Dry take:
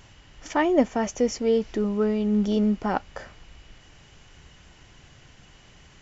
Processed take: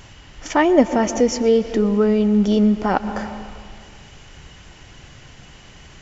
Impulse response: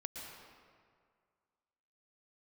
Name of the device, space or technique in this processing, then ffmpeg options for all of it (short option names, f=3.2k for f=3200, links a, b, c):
ducked reverb: -filter_complex "[0:a]asplit=3[a][b][c];[1:a]atrim=start_sample=2205[d];[b][d]afir=irnorm=-1:irlink=0[e];[c]apad=whole_len=265363[f];[e][f]sidechaincompress=threshold=-28dB:ratio=3:attack=9.6:release=143,volume=-3.5dB[g];[a][g]amix=inputs=2:normalize=0,volume=5dB"